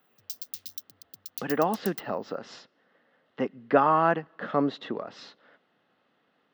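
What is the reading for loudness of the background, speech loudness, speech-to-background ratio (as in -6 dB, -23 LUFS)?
-39.5 LUFS, -27.5 LUFS, 12.0 dB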